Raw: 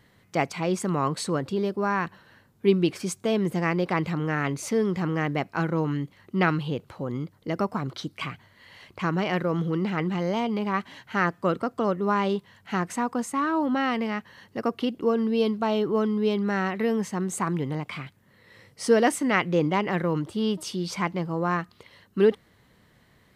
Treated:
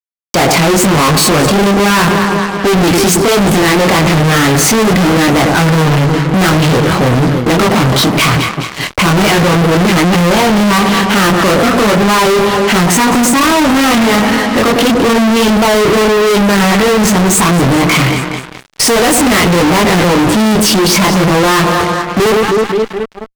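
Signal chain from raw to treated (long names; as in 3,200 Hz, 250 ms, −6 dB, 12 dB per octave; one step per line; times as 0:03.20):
noise gate −48 dBFS, range −35 dB
chorus effect 0.4 Hz, depth 3.8 ms
asymmetric clip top −24.5 dBFS
delay that swaps between a low-pass and a high-pass 105 ms, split 930 Hz, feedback 72%, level −13 dB
fuzz pedal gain 49 dB, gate −58 dBFS
level +5 dB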